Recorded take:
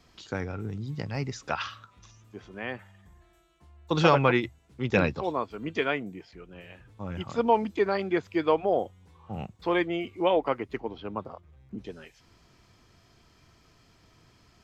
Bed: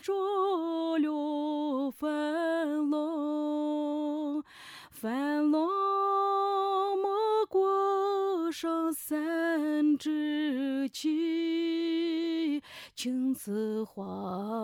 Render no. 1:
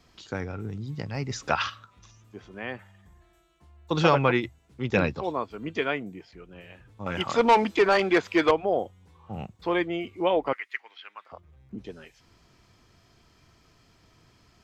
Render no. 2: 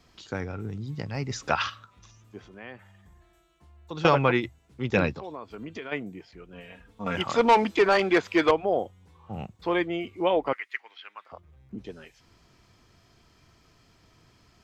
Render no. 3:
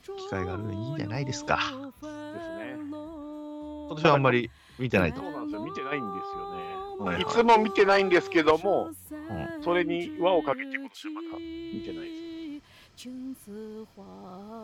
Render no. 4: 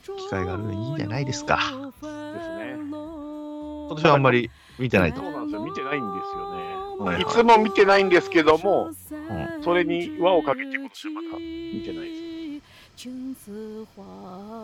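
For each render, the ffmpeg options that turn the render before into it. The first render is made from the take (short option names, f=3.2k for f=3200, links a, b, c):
-filter_complex "[0:a]asettb=1/sr,asplit=3[a][b][c];[a]atrim=end=1.304[d];[b]atrim=start=1.3:end=1.7,asetpts=PTS-STARTPTS,afade=t=in:d=0.004:c=qsin,afade=t=out:st=0.396:d=0.004:c=qsin,acontrast=37[e];[c]atrim=start=1.696[f];[d][e]acrossfade=d=0.004:c1=hsin:c2=qsin[g];[g][f]acrossfade=d=0.004:c1=qsin:c2=hsin,asettb=1/sr,asplit=3[h][i][j];[h]atrim=end=7.064[k];[i]atrim=start=7.06:end=8.51,asetpts=PTS-STARTPTS,afade=t=in:d=0.004:c=qsin,afade=t=out:st=1.446:d=0.004:c=qsin,asplit=2[l][m];[m]highpass=f=720:p=1,volume=19dB,asoftclip=type=tanh:threshold=-10dB[n];[l][n]amix=inputs=2:normalize=0,lowpass=f=5.9k:p=1,volume=-6dB[o];[j]atrim=start=8.506[p];[k][o]acrossfade=d=0.004:c1=hsin:c2=qsin[q];[q][p]acrossfade=d=0.004:c1=qsin:c2=hsin,asettb=1/sr,asplit=3[r][s][t];[r]atrim=end=10.534[u];[s]atrim=start=10.53:end=11.32,asetpts=PTS-STARTPTS,afade=t=in:d=0.004:c=qsin,afade=t=out:st=0.786:d=0.004:c=qsin,highpass=f=1.9k:t=q:w=3.2[v];[t]atrim=start=11.316[w];[u][v]acrossfade=d=0.004:c1=hsin:c2=qsin[x];[x][w]acrossfade=d=0.004:c1=qsin:c2=hsin"
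-filter_complex "[0:a]asettb=1/sr,asplit=3[a][b][c];[a]atrim=end=2.474[d];[b]atrim=start=2.47:end=4.05,asetpts=PTS-STARTPTS,afade=t=in:d=0.004:c=qsin,afade=t=out:st=1.576:d=0.004:c=qsin,acompressor=threshold=-50dB:ratio=1.5:attack=3.2:release=140:knee=1:detection=peak[e];[c]atrim=start=4.046[f];[d][e]acrossfade=d=0.004:c1=hsin:c2=qsin[g];[g][f]acrossfade=d=0.004:c1=qsin:c2=hsin,asplit=3[h][i][j];[h]afade=t=out:st=5.13:d=0.02[k];[i]acompressor=threshold=-34dB:ratio=5:attack=3.2:release=140:knee=1:detection=peak,afade=t=in:st=5.13:d=0.02,afade=t=out:st=5.91:d=0.02[l];[j]afade=t=in:st=5.91:d=0.02[m];[k][l][m]amix=inputs=3:normalize=0,asettb=1/sr,asplit=3[n][o][p];[n]atrim=end=6.534[q];[o]atrim=start=6.53:end=7.16,asetpts=PTS-STARTPTS,afade=t=in:d=0.004:c=qsin,afade=t=out:st=0.626:d=0.004:c=qsin,aecho=1:1:4.3:0.79,atrim=end_sample=27783[r];[p]atrim=start=7.156[s];[q][r]acrossfade=d=0.004:c1=hsin:c2=qsin[t];[t][s]acrossfade=d=0.004:c1=qsin:c2=hsin"
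-filter_complex "[1:a]volume=-8.5dB[a];[0:a][a]amix=inputs=2:normalize=0"
-af "volume=4.5dB,alimiter=limit=-3dB:level=0:latency=1"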